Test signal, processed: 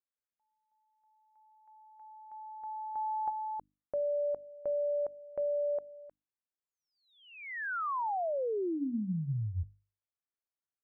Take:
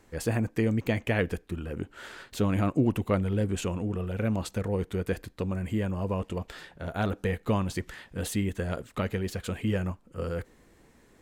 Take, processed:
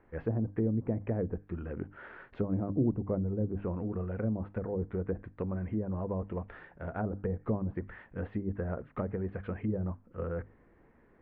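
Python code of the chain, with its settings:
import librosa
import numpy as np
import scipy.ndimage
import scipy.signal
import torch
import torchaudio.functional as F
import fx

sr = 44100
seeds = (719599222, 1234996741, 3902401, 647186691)

y = fx.env_lowpass_down(x, sr, base_hz=530.0, full_db=-24.0)
y = scipy.signal.sosfilt(scipy.signal.butter(4, 2000.0, 'lowpass', fs=sr, output='sos'), y)
y = fx.hum_notches(y, sr, base_hz=50, count=6)
y = F.gain(torch.from_numpy(y), -3.0).numpy()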